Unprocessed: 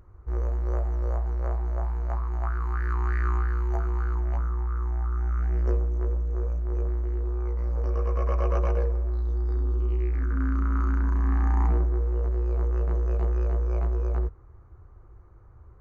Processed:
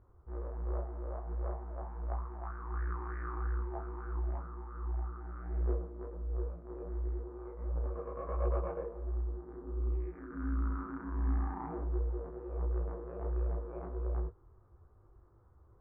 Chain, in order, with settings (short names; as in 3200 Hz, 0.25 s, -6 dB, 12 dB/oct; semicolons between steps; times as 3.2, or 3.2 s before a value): Bessel low-pass 1200 Hz, order 4; low shelf 130 Hz -8 dB; detuned doubles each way 49 cents; gain -2 dB